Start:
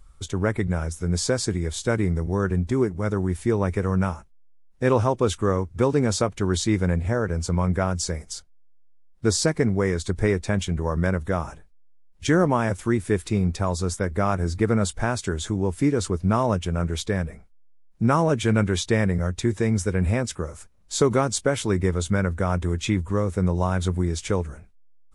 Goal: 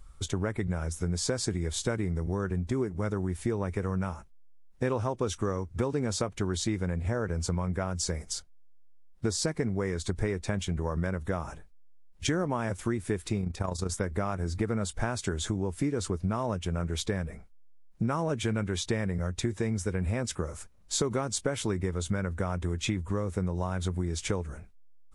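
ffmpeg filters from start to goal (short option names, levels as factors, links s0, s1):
-filter_complex "[0:a]asettb=1/sr,asplit=3[s0][s1][s2];[s0]atrim=end=5.214[s3];[s1]atrim=start=5.21:end=5.66,asetpts=PTS-STARTPTS,afade=t=in:d=0.004:c=qsin,afade=t=out:st=0.446:d=0.004:c=qsin,equalizer=f=5800:w=7.4:g=8.5[s4];[s2]atrim=start=5.656[s5];[s3][s4]acrossfade=d=0.004:c1=hsin:c2=qsin[s6];[s6][s5]acrossfade=d=0.004:c1=qsin:c2=hsin,asplit=3[s7][s8][s9];[s7]afade=t=out:st=13.41:d=0.02[s10];[s8]tremolo=f=28:d=0.667,afade=t=in:st=13.41:d=0.02,afade=t=out:st=13.9:d=0.02[s11];[s9]afade=t=in:st=13.9:d=0.02[s12];[s10][s11][s12]amix=inputs=3:normalize=0,acompressor=threshold=0.0501:ratio=6"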